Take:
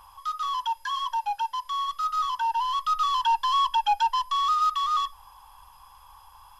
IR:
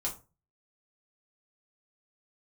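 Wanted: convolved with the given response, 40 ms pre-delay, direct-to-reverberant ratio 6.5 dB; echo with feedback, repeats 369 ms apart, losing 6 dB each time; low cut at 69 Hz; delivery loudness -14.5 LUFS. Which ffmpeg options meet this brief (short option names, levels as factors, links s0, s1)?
-filter_complex "[0:a]highpass=69,aecho=1:1:369|738|1107|1476|1845|2214:0.501|0.251|0.125|0.0626|0.0313|0.0157,asplit=2[s0][s1];[1:a]atrim=start_sample=2205,adelay=40[s2];[s1][s2]afir=irnorm=-1:irlink=0,volume=0.355[s3];[s0][s3]amix=inputs=2:normalize=0,volume=3.16"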